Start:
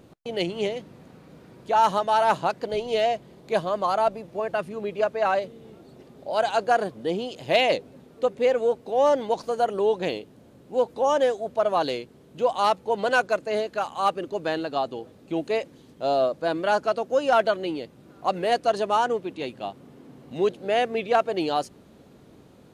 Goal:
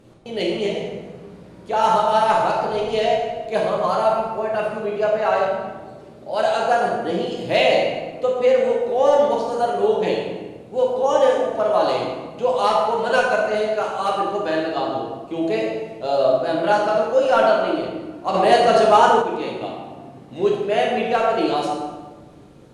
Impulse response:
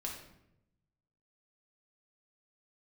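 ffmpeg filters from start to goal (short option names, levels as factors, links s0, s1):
-filter_complex "[1:a]atrim=start_sample=2205,asetrate=22491,aresample=44100[s0];[0:a][s0]afir=irnorm=-1:irlink=0,asettb=1/sr,asplit=3[s1][s2][s3];[s1]atrim=end=18.344[s4];[s2]atrim=start=18.34:end=19.22,asetpts=PTS-STARTPTS,afade=t=in:d=0.004:c=qsin,afade=t=out:st=0.876:d=0.004:c=qsin,acontrast=38[s5];[s3]atrim=start=19.216[s6];[s4][s5]acrossfade=d=0.004:c1=hsin:c2=qsin[s7];[s7][s6]acrossfade=d=0.004:c1=qsin:c2=hsin"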